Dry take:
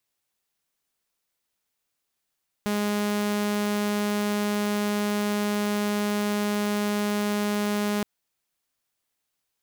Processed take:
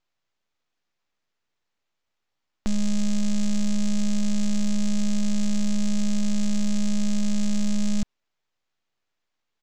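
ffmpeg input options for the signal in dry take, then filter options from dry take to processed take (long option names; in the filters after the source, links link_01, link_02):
-f lavfi -i "aevalsrc='0.0891*(2*mod(207*t,1)-1)':duration=5.37:sample_rate=44100"
-af "acontrast=52,aresample=16000,aeval=exprs='abs(val(0))':channel_layout=same,aresample=44100,adynamicsmooth=sensitivity=7:basefreq=5200"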